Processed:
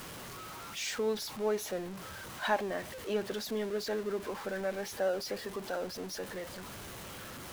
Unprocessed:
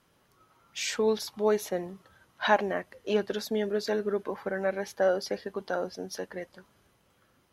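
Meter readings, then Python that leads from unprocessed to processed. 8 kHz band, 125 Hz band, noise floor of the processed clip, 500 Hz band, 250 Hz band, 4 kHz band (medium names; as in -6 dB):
-1.5 dB, -3.0 dB, -45 dBFS, -5.5 dB, -5.0 dB, -2.5 dB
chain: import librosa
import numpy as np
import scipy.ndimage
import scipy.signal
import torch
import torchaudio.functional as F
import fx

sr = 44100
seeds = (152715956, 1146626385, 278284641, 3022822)

y = x + 0.5 * 10.0 ** (-32.0 / 20.0) * np.sign(x)
y = y * librosa.db_to_amplitude(-7.5)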